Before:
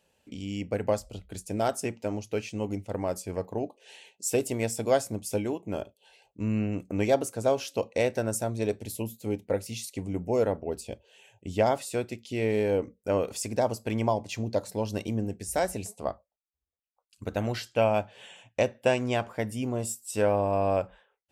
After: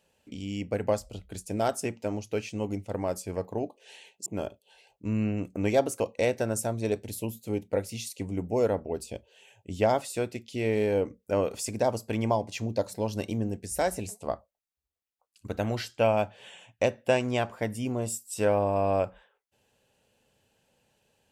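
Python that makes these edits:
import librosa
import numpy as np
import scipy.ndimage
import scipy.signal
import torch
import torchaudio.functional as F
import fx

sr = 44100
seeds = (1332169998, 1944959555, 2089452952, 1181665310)

y = fx.edit(x, sr, fx.cut(start_s=4.26, length_s=1.35),
    fx.cut(start_s=7.35, length_s=0.42), tone=tone)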